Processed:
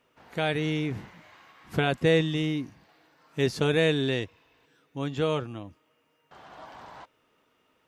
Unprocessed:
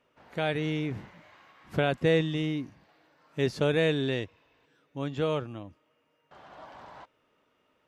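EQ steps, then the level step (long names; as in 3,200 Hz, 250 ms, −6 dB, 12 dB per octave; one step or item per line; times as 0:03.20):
high-shelf EQ 5,400 Hz +6.5 dB
notch filter 580 Hz, Q 13
+2.0 dB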